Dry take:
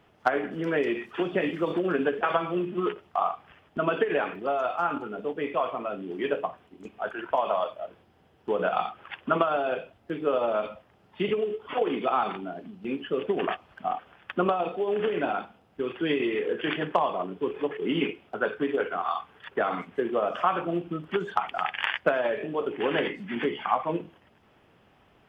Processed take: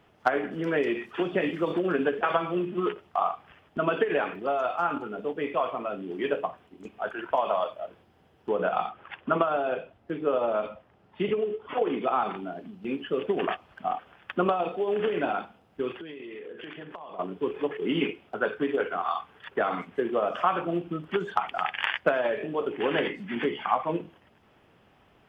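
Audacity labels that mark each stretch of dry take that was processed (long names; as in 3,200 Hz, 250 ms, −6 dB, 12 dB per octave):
8.490000	12.370000	high-shelf EQ 3,600 Hz −9 dB
15.940000	17.190000	downward compressor 16 to 1, threshold −37 dBFS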